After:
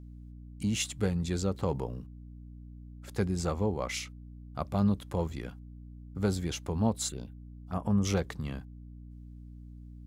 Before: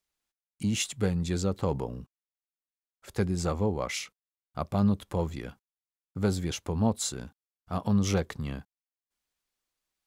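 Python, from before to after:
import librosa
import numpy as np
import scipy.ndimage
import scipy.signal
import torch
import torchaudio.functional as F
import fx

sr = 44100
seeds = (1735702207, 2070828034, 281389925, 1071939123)

y = fx.env_phaser(x, sr, low_hz=260.0, high_hz=4100.0, full_db=-30.5, at=(7.08, 8.05))
y = fx.add_hum(y, sr, base_hz=60, snr_db=13)
y = F.gain(torch.from_numpy(y), -2.0).numpy()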